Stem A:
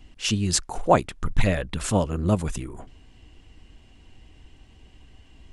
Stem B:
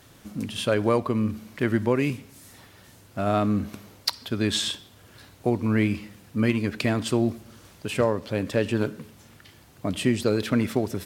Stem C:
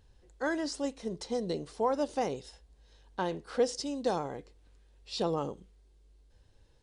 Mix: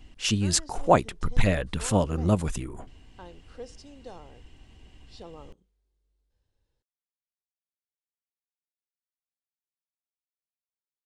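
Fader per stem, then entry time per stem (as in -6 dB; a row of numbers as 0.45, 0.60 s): -1.0 dB, off, -14.0 dB; 0.00 s, off, 0.00 s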